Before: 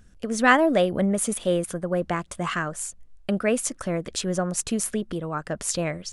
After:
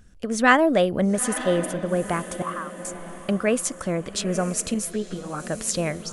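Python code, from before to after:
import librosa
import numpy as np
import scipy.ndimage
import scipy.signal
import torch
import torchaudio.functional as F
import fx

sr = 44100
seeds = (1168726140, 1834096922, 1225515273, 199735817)

p1 = fx.ladder_bandpass(x, sr, hz=1200.0, resonance_pct=70, at=(2.42, 2.85))
p2 = p1 + fx.echo_diffused(p1, sr, ms=913, feedback_pct=41, wet_db=-13.0, dry=0)
p3 = fx.ensemble(p2, sr, at=(4.74, 5.4))
y = p3 * librosa.db_to_amplitude(1.0)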